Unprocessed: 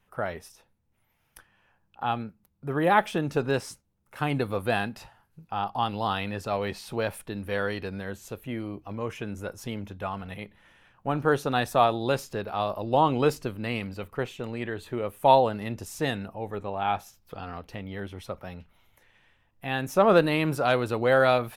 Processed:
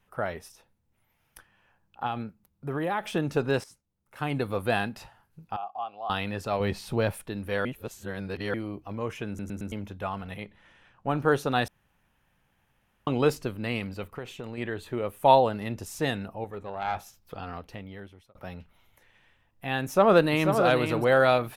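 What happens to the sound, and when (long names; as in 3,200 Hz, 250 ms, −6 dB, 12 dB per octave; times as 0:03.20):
0:02.06–0:03.11: downward compressor 4 to 1, threshold −26 dBFS
0:03.64–0:04.61: fade in, from −13.5 dB
0:05.56–0:06.10: formant filter a
0:06.60–0:07.12: low-shelf EQ 260 Hz +8.5 dB
0:07.65–0:08.54: reverse
0:09.28: stutter in place 0.11 s, 4 plays
0:10.42–0:11.09: low-pass filter 8,000 Hz
0:11.68–0:13.07: fill with room tone
0:14.17–0:14.58: downward compressor, threshold −32 dBFS
0:16.44–0:16.96: tube saturation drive 19 dB, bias 0.65
0:17.54–0:18.35: fade out
0:19.83–0:20.55: delay throw 490 ms, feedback 10%, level −6.5 dB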